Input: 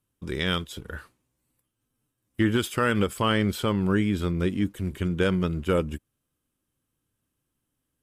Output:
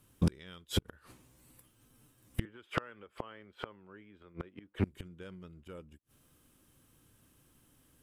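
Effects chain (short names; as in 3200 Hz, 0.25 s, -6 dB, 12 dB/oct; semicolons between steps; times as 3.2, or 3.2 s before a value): 2.45–4.84 three-band isolator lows -12 dB, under 370 Hz, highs -22 dB, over 3000 Hz; flipped gate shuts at -27 dBFS, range -38 dB; soft clip -31.5 dBFS, distortion -13 dB; gain +13.5 dB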